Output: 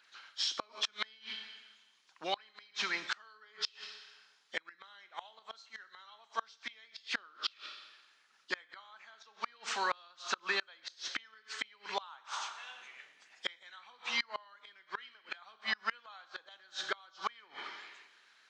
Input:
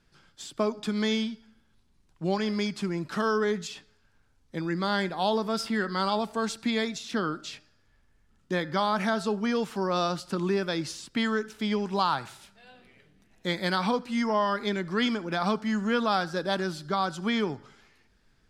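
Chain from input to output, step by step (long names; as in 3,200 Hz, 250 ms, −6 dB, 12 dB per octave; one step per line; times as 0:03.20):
hearing-aid frequency compression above 2,800 Hz 1.5 to 1
high-pass filter 1,200 Hz 12 dB per octave
harmonic and percussive parts rebalanced harmonic −8 dB
four-comb reverb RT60 1.2 s, combs from 29 ms, DRR 11 dB
gate with flip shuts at −32 dBFS, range −31 dB
level +12 dB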